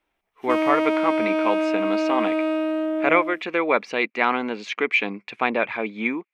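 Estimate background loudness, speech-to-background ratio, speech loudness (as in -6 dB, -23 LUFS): -23.5 LUFS, -1.0 dB, -24.5 LUFS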